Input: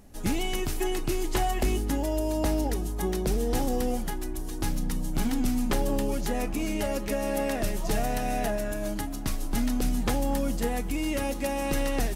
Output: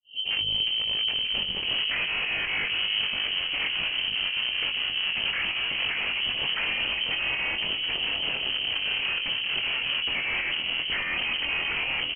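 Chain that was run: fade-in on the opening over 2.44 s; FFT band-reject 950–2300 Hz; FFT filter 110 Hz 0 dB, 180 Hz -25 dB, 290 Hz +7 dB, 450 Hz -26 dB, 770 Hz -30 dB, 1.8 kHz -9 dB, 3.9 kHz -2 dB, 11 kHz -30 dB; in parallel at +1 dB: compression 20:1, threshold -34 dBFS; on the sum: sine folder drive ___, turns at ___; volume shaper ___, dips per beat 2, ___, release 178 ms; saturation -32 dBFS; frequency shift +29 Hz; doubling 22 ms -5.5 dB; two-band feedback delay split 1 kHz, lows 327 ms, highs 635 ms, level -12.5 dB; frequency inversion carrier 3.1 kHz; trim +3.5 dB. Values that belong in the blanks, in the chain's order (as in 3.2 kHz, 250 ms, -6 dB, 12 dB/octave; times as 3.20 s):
16 dB, -14 dBFS, 147 bpm, -21 dB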